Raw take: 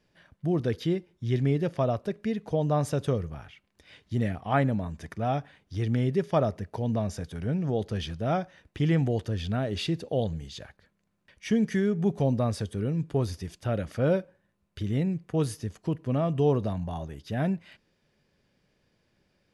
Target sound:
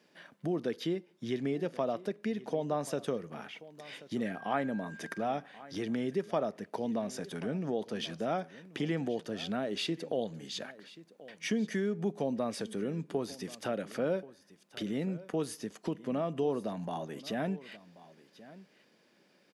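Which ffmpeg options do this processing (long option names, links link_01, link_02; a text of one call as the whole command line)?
ffmpeg -i in.wav -filter_complex "[0:a]highpass=frequency=200:width=0.5412,highpass=frequency=200:width=1.3066,acompressor=threshold=-43dB:ratio=2,asettb=1/sr,asplit=3[link_01][link_02][link_03];[link_01]atrim=end=4.264[link_04];[link_02]atrim=start=4.26:end=5.21,asetpts=PTS-STARTPTS,afade=type=in:duration=0.004:curve=qsin,afade=type=out:start_time=0.946:duration=0.004:curve=qsin,aeval=exprs='val(0)+0.00224*sin(2*PI*1600*n/s)':channel_layout=same[link_05];[link_03]atrim=start=5.206[link_06];[link_04][link_05]acrossfade=duration=0.004:curve1=hsin:curve2=qsin[link_07];[link_07][link_06]acrossfade=duration=0.004:curve1=qsin:curve2=hsin,aecho=1:1:1083:0.119,volume=5.5dB" out.wav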